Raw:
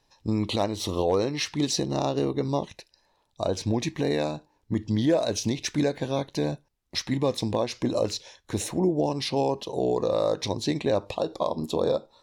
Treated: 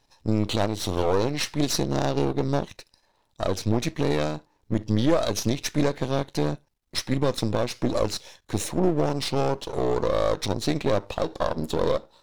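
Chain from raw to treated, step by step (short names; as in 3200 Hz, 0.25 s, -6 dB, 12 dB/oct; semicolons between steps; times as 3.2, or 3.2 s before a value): half-wave gain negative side -12 dB; gain +4.5 dB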